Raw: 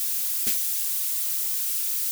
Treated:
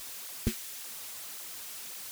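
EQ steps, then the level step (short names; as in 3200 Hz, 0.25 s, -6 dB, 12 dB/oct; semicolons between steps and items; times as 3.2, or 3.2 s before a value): tilt -4.5 dB/oct; 0.0 dB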